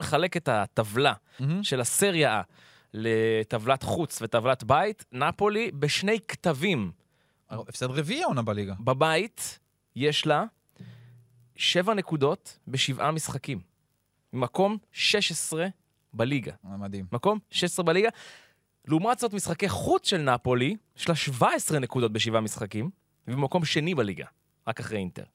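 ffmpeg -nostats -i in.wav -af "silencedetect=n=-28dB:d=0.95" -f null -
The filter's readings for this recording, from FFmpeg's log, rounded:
silence_start: 10.45
silence_end: 11.60 | silence_duration: 1.15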